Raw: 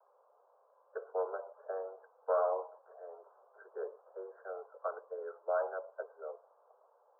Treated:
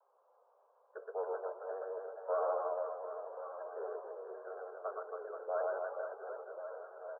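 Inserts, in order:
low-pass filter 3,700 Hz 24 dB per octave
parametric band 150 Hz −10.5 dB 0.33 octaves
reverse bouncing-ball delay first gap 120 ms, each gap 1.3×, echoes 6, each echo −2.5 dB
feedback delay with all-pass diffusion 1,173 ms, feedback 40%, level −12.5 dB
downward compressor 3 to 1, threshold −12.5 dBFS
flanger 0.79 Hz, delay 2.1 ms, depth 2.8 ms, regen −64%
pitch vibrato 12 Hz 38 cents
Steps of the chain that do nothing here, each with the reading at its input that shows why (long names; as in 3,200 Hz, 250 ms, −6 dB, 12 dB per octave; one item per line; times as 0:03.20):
low-pass filter 3,700 Hz: nothing at its input above 1,600 Hz
parametric band 150 Hz: nothing at its input below 340 Hz
downward compressor, threshold −12.5 dBFS: peak of its input −18.5 dBFS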